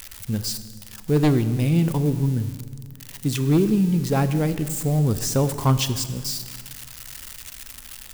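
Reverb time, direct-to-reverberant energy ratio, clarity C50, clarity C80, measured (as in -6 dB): 1.8 s, 11.5 dB, 12.5 dB, 13.5 dB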